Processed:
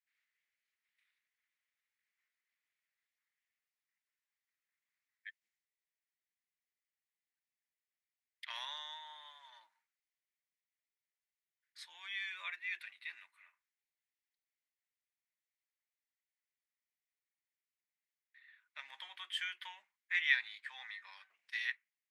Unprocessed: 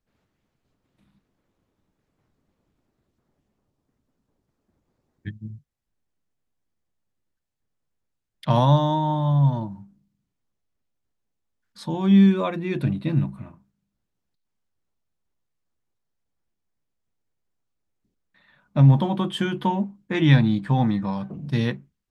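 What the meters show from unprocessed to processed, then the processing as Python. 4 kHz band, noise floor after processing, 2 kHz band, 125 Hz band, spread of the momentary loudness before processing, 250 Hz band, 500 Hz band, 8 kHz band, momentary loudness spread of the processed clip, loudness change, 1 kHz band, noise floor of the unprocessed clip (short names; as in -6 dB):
-8.0 dB, under -85 dBFS, -2.5 dB, under -40 dB, 20 LU, under -40 dB, under -40 dB, n/a, 21 LU, -18.5 dB, -26.5 dB, -79 dBFS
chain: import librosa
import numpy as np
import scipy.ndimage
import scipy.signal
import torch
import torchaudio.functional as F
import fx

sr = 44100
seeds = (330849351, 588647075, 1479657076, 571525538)

y = fx.ladder_highpass(x, sr, hz=1800.0, resonance_pct=65)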